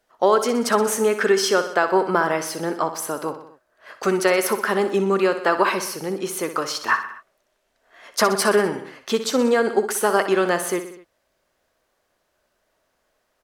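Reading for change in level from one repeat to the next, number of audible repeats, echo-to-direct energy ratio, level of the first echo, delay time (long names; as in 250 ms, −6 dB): −4.5 dB, 4, −9.0 dB, −11.0 dB, 62 ms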